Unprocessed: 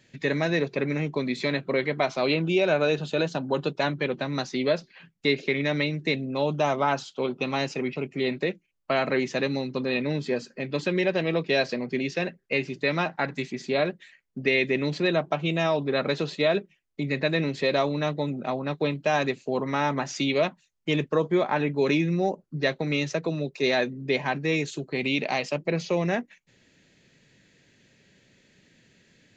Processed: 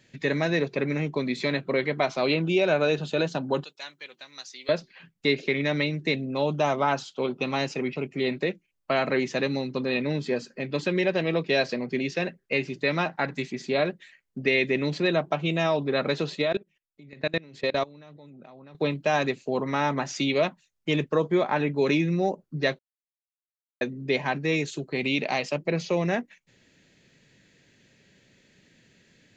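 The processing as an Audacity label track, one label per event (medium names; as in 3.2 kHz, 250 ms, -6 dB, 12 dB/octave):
3.640000	4.690000	differentiator
16.420000	18.750000	level held to a coarse grid steps of 24 dB
22.790000	23.810000	mute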